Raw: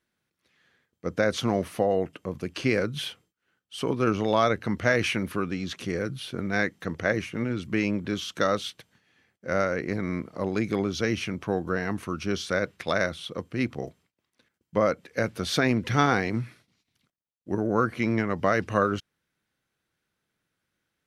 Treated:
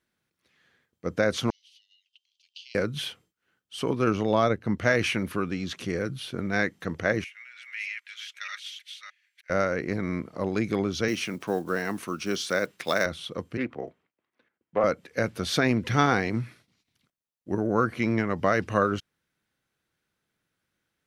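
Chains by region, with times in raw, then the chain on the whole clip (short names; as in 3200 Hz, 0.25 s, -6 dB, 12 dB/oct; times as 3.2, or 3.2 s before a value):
1.5–2.75 Chebyshev high-pass 3000 Hz, order 5 + air absorption 200 m
4.23–4.8 tilt shelf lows +3.5 dB, about 700 Hz + upward expander, over -35 dBFS
7.24–9.5 reverse delay 0.31 s, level -1 dB + ladder high-pass 1800 Hz, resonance 50% + comb 4.9 ms, depth 35%
11.08–13.06 block floating point 7-bit + HPF 180 Hz + high shelf 4700 Hz +6 dB
13.57–14.84 three-band isolator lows -12 dB, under 230 Hz, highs -17 dB, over 2800 Hz + Doppler distortion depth 0.14 ms
whole clip: dry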